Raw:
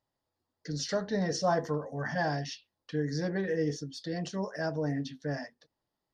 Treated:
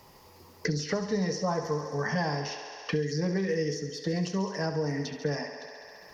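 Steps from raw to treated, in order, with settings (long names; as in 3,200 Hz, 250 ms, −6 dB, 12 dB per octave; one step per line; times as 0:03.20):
EQ curve with evenly spaced ripples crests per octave 0.81, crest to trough 8 dB
feedback echo with a high-pass in the loop 68 ms, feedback 70%, high-pass 250 Hz, level −10 dB
multiband upward and downward compressor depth 100%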